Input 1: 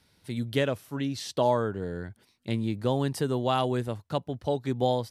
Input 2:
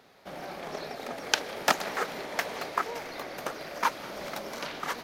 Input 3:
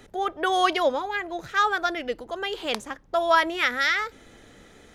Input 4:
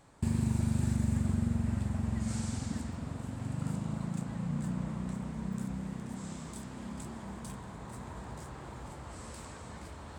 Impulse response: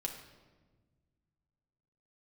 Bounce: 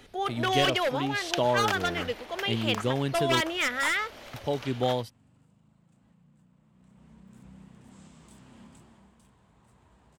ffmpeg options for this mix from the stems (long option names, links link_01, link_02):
-filter_complex "[0:a]volume=-1.5dB,asplit=3[link_01][link_02][link_03];[link_01]atrim=end=3.41,asetpts=PTS-STARTPTS,afade=type=out:start_time=3.406:duration=0.004:curve=hsin[link_04];[link_02]atrim=start=3.41:end=4.34,asetpts=PTS-STARTPTS,volume=0[link_05];[link_03]atrim=start=4.34,asetpts=PTS-STARTPTS,afade=type=in:duration=0.004:curve=hsin[link_06];[link_04][link_05][link_06]concat=n=3:v=0:a=1[link_07];[1:a]highpass=460,volume=-8.5dB[link_08];[2:a]aeval=exprs='0.133*(abs(mod(val(0)/0.133+3,4)-2)-1)':channel_layout=same,volume=-3.5dB[link_09];[3:a]asoftclip=type=tanh:threshold=-26.5dB,flanger=delay=0.7:depth=7.7:regen=-70:speed=0.51:shape=triangular,alimiter=level_in=13.5dB:limit=-24dB:level=0:latency=1:release=414,volume=-13.5dB,adelay=1750,volume=-4.5dB,afade=type=in:start_time=6.73:duration=0.79:silence=0.237137,afade=type=out:start_time=8.65:duration=0.49:silence=0.375837[link_10];[link_07][link_08][link_09][link_10]amix=inputs=4:normalize=0,equalizer=frequency=2900:width=2.5:gain=6.5"